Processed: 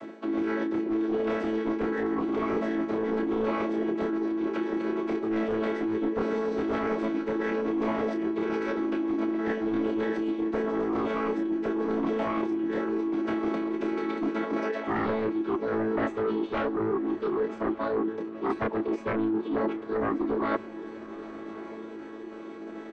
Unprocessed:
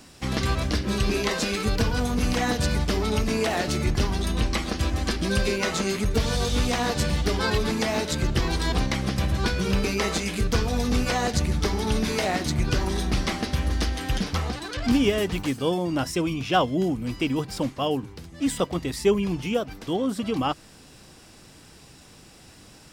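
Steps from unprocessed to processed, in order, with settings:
channel vocoder with a chord as carrier major triad, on A3
sine wavefolder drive 12 dB, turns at −8.5 dBFS
double-tracking delay 28 ms −4 dB
reversed playback
downward compressor 12 to 1, threshold −21 dBFS, peak gain reduction 14.5 dB
reversed playback
low-pass filter 1,500 Hz 12 dB per octave
formants moved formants +5 semitones
on a send: feedback delay with all-pass diffusion 1,163 ms, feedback 48%, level −16 dB
on the sum: level −3.5 dB

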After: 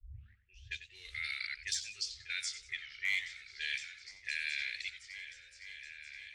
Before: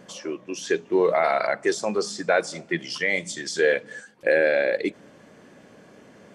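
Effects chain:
turntable start at the beginning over 0.47 s
low-pass that shuts in the quiet parts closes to 330 Hz, open at −17 dBFS
inverse Chebyshev band-stop filter 160–1,100 Hz, stop band 50 dB
gain into a clipping stage and back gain 23.5 dB
on a send: echo whose low-pass opens from repeat to repeat 514 ms, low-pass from 200 Hz, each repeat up 2 octaves, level −6 dB
on the sum: feedback echo with a swinging delay time 90 ms, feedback 31%, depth 143 cents, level −12 dB

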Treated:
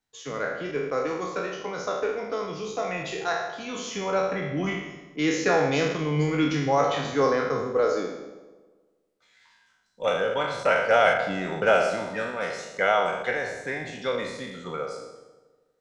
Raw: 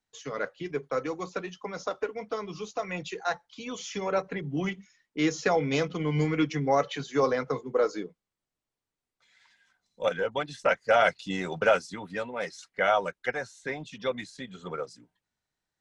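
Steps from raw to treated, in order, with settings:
peak hold with a decay on every bin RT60 0.91 s
0:11.13–0:11.67: high-shelf EQ 4,000 Hz −9 dB
delay with a low-pass on its return 80 ms, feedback 69%, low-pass 780 Hz, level −11.5 dB

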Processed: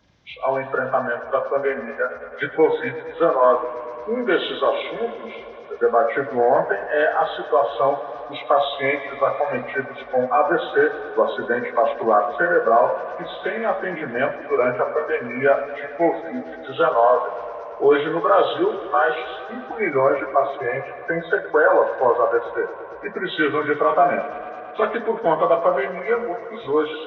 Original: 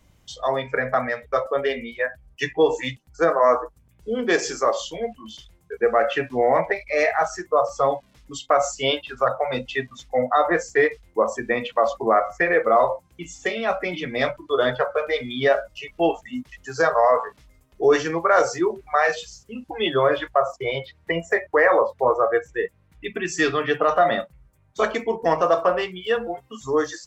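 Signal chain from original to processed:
hearing-aid frequency compression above 1,000 Hz 1.5 to 1
high-pass filter 170 Hz 6 dB per octave
tape delay 112 ms, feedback 89%, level −14.5 dB, low-pass 5,600 Hz
level +2 dB

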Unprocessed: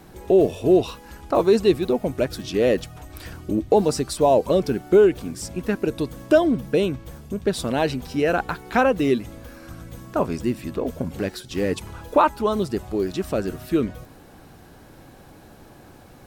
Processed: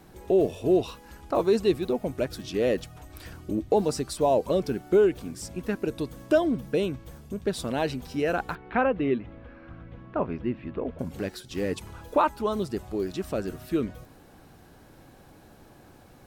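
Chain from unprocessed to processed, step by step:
0:08.55–0:10.99: low-pass filter 2,800 Hz 24 dB per octave
level −5.5 dB

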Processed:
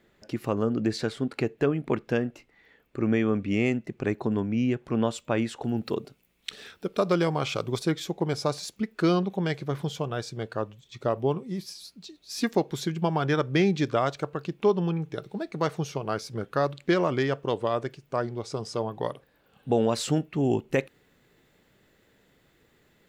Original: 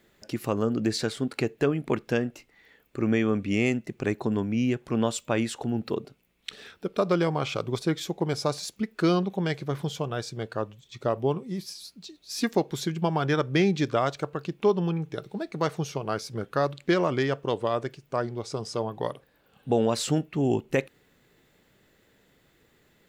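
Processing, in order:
high-shelf EQ 4,500 Hz −9.5 dB, from 0:05.64 +4 dB, from 0:07.92 −2.5 dB

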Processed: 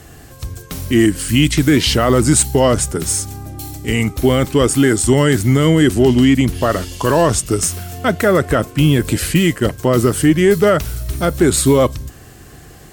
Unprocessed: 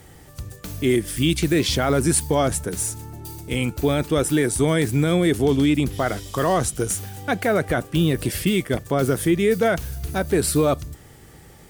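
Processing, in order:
harmonic generator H 4 −32 dB, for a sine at −8.5 dBFS
change of speed 0.905×
level +7 dB

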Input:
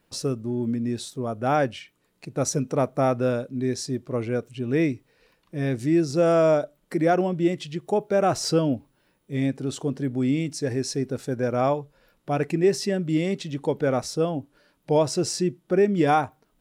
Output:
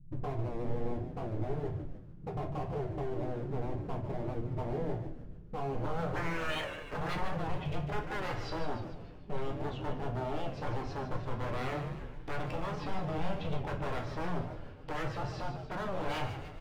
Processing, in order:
spectral tilt −3.5 dB per octave
brickwall limiter −11.5 dBFS, peak gain reduction 6.5 dB
downward compressor 3 to 1, threshold −33 dBFS, peak gain reduction 13.5 dB
low-pass filter sweep 140 Hz → 3,000 Hz, 0:05.52–0:07.80
wave folding −33 dBFS
echo with shifted repeats 148 ms, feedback 55%, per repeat −90 Hz, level −9 dB
rectangular room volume 39 cubic metres, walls mixed, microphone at 0.51 metres
wow of a warped record 78 rpm, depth 100 cents
level −1.5 dB

